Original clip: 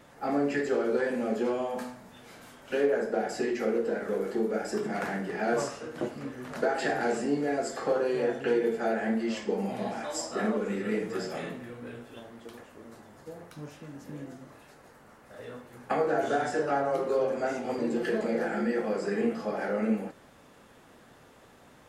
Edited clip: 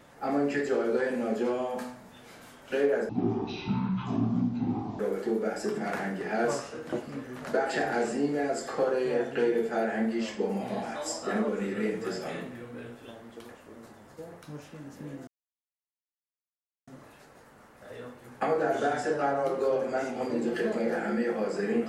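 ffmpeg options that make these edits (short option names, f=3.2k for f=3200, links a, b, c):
-filter_complex "[0:a]asplit=4[a][b][c][d];[a]atrim=end=3.094[e];[b]atrim=start=3.09:end=4.08,asetpts=PTS-STARTPTS,asetrate=22932,aresample=44100[f];[c]atrim=start=4.076:end=14.36,asetpts=PTS-STARTPTS,afade=t=out:st=10.28:d=0.004:c=hsin,apad=pad_dur=1.6[g];[d]atrim=start=14.36,asetpts=PTS-STARTPTS,afade=t=in:d=0.004:c=hsin[h];[e][f]acrossfade=d=0.004:c1=hsin:c2=hsin[i];[g][h]concat=n=2:v=0:a=1[j];[i][j]acrossfade=d=0.004:c1=hsin:c2=hsin"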